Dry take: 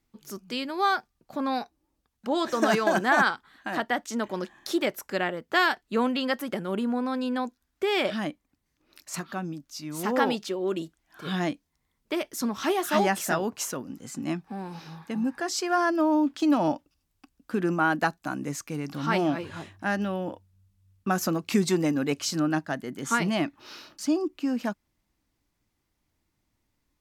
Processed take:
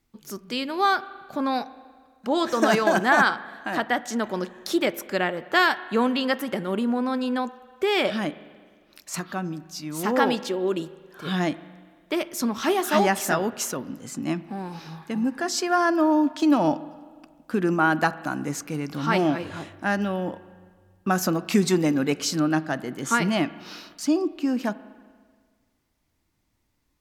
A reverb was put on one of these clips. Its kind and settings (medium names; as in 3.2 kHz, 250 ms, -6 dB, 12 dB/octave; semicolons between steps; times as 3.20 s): spring tank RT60 1.7 s, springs 38/44 ms, chirp 35 ms, DRR 16 dB; trim +3 dB